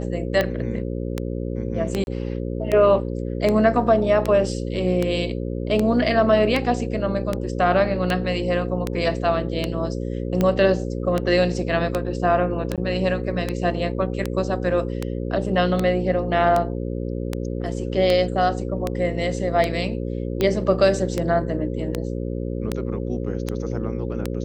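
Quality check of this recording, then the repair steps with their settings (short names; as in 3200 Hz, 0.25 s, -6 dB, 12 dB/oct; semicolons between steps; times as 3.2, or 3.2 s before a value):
buzz 60 Hz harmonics 9 -27 dBFS
tick 78 rpm -9 dBFS
2.04–2.07 gap 31 ms
12.76–12.78 gap 17 ms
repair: de-click; de-hum 60 Hz, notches 9; interpolate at 2.04, 31 ms; interpolate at 12.76, 17 ms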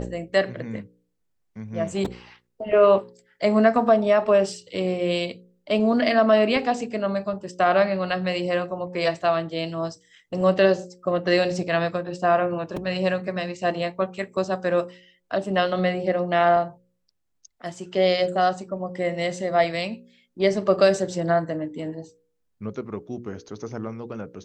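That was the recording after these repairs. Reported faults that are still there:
none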